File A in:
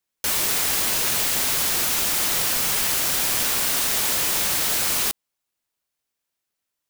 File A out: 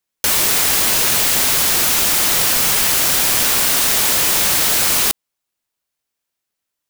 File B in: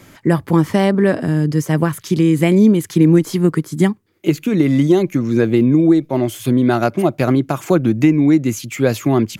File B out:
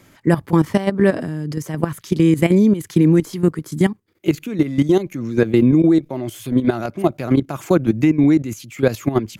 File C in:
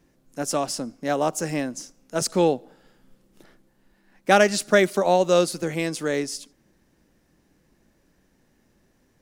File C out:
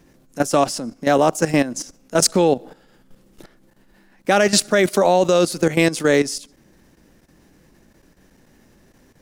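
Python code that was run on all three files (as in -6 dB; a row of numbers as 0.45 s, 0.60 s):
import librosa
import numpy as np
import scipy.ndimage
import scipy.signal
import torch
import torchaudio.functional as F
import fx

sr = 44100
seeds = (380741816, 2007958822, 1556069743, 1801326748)

y = fx.level_steps(x, sr, step_db=13)
y = librosa.util.normalize(y) * 10.0 ** (-1.5 / 20.0)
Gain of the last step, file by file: +11.0 dB, +1.0 dB, +12.0 dB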